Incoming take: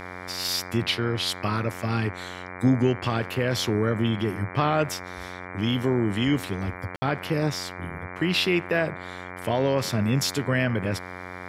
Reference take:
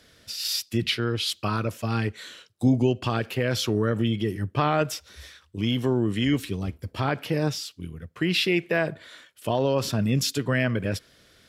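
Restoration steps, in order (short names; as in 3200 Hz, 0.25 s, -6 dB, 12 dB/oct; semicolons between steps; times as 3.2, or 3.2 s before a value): de-hum 90.7 Hz, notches 26; room tone fill 6.96–7.02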